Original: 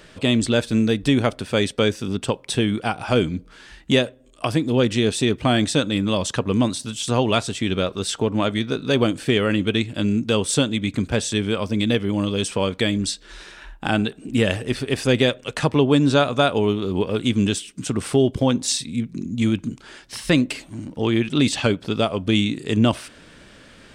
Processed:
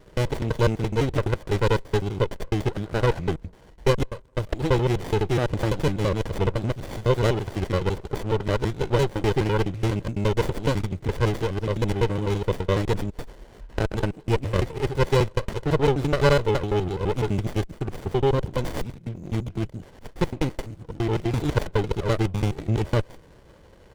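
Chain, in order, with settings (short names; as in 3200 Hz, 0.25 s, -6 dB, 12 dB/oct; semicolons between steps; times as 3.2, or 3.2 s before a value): slices in reverse order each 84 ms, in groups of 2; comb 2 ms, depth 79%; running maximum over 33 samples; gain -3.5 dB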